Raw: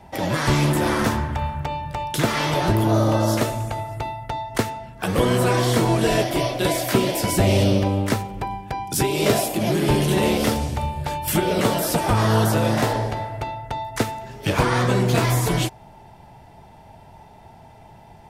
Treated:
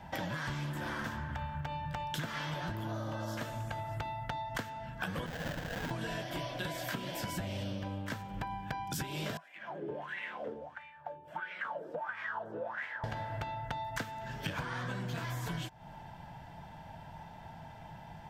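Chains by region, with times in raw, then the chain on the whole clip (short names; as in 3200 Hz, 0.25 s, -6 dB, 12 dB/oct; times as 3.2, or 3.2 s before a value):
5.26–5.91 sine-wave speech + HPF 910 Hz + sample-rate reducer 1200 Hz, jitter 20%
9.37–13.04 bell 4700 Hz -4 dB 0.75 oct + wah 1.5 Hz 400–2200 Hz, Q 8
whole clip: thirty-one-band EQ 160 Hz +7 dB, 400 Hz -9 dB, 1000 Hz +3 dB, 1600 Hz +10 dB, 3150 Hz +5 dB, 10000 Hz -10 dB; compressor 16:1, threshold -30 dBFS; gain -4.5 dB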